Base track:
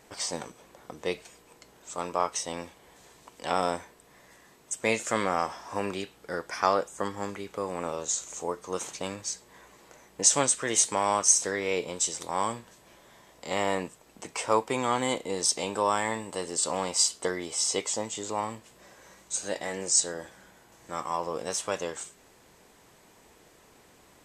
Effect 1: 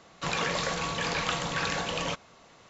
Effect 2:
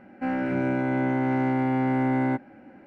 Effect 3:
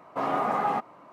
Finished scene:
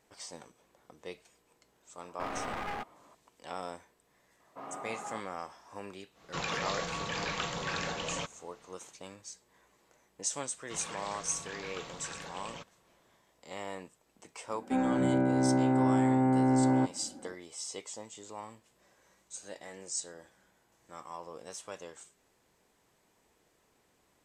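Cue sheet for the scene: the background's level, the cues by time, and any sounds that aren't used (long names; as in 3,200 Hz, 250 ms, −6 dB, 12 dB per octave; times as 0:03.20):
base track −13 dB
0:02.03: mix in 3 −9 dB + wavefolder on the positive side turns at −27.5 dBFS
0:04.40: mix in 3 −16.5 dB
0:06.11: mix in 1 −5.5 dB, fades 0.10 s
0:10.48: mix in 1 −14.5 dB + one half of a high-frequency compander decoder only
0:14.49: mix in 2 −1.5 dB + low-pass filter 1,200 Hz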